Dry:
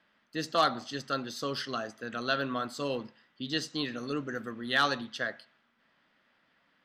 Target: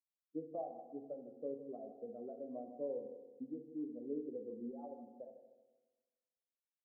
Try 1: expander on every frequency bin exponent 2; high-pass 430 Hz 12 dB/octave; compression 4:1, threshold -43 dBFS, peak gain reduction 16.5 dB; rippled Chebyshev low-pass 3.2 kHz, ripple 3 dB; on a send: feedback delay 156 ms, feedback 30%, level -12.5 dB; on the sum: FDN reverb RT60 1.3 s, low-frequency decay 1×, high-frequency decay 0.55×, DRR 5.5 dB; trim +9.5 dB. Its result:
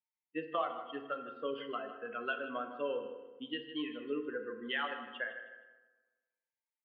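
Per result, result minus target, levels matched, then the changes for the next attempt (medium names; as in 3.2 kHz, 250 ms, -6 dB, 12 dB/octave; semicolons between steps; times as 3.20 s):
1 kHz band +6.5 dB; compression: peak gain reduction -4.5 dB
change: rippled Chebyshev low-pass 830 Hz, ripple 3 dB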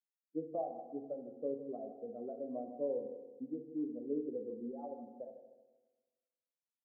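compression: peak gain reduction -4.5 dB
change: compression 4:1, threshold -49 dBFS, peak gain reduction 21 dB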